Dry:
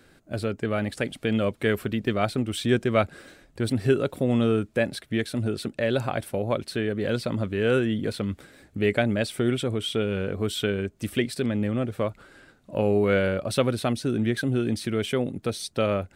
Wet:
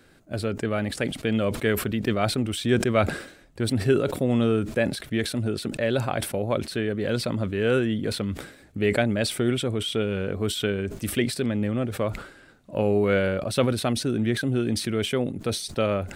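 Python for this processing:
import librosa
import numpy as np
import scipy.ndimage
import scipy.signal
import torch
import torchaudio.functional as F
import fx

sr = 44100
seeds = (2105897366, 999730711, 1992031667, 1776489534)

y = fx.sustainer(x, sr, db_per_s=96.0)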